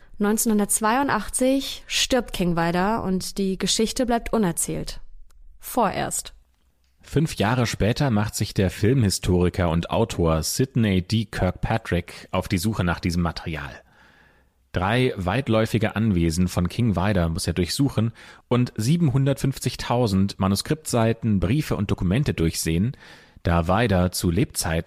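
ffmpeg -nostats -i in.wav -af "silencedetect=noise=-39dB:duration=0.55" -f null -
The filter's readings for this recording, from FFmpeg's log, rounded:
silence_start: 6.34
silence_end: 7.04 | silence_duration: 0.70
silence_start: 13.79
silence_end: 14.75 | silence_duration: 0.96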